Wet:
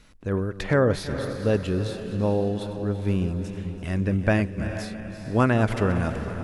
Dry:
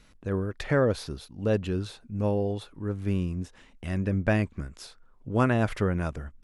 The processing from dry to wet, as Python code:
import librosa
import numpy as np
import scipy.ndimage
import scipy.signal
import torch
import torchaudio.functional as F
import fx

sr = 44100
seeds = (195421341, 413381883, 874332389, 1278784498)

y = fx.reverse_delay_fb(x, sr, ms=167, feedback_pct=70, wet_db=-13.5)
y = fx.echo_diffused(y, sr, ms=451, feedback_pct=45, wet_db=-11)
y = F.gain(torch.from_numpy(y), 3.0).numpy()